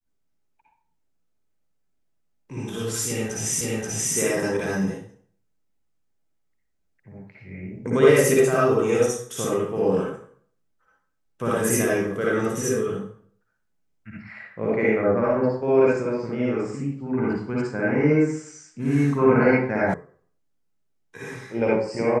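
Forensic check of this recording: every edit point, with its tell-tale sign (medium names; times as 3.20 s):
3.61 s: repeat of the last 0.53 s
19.94 s: sound stops dead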